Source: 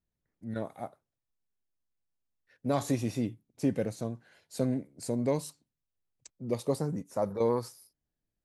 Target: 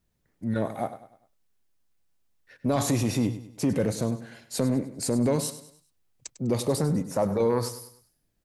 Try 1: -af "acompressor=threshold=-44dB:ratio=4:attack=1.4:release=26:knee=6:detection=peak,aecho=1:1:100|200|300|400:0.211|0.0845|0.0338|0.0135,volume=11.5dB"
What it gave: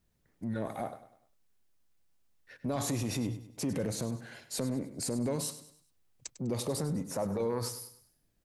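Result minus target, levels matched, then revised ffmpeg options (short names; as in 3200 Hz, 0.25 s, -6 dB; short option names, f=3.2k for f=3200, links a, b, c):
compressor: peak gain reduction +8.5 dB
-af "acompressor=threshold=-32.5dB:ratio=4:attack=1.4:release=26:knee=6:detection=peak,aecho=1:1:100|200|300|400:0.211|0.0845|0.0338|0.0135,volume=11.5dB"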